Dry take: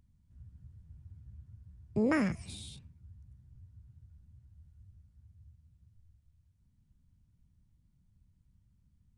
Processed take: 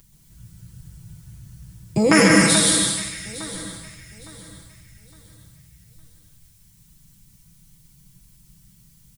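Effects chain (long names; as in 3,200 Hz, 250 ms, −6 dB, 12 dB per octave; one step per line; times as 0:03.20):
first-order pre-emphasis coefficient 0.9
comb filter 6.1 ms, depth 81%
delay that swaps between a low-pass and a high-pass 430 ms, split 1,900 Hz, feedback 54%, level −11.5 dB
dense smooth reverb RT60 1.1 s, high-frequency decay 0.95×, pre-delay 120 ms, DRR 0.5 dB
boost into a limiter +30.5 dB
level −1 dB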